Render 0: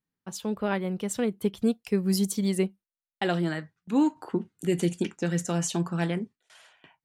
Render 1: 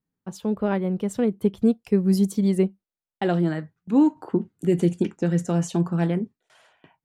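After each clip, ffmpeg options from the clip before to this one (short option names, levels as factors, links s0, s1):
-af "tiltshelf=f=1200:g=6"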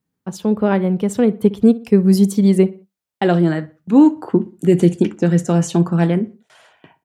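-filter_complex "[0:a]highpass=50,asplit=2[s0][s1];[s1]adelay=61,lowpass=f=3200:p=1,volume=0.119,asplit=2[s2][s3];[s3]adelay=61,lowpass=f=3200:p=1,volume=0.38,asplit=2[s4][s5];[s5]adelay=61,lowpass=f=3200:p=1,volume=0.38[s6];[s0][s2][s4][s6]amix=inputs=4:normalize=0,volume=2.37"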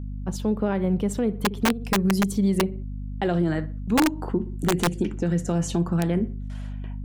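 -af "aeval=exprs='val(0)+0.0398*(sin(2*PI*50*n/s)+sin(2*PI*2*50*n/s)/2+sin(2*PI*3*50*n/s)/3+sin(2*PI*4*50*n/s)/4+sin(2*PI*5*50*n/s)/5)':c=same,aeval=exprs='(mod(1.5*val(0)+1,2)-1)/1.5':c=same,alimiter=limit=0.266:level=0:latency=1:release=143,volume=0.708"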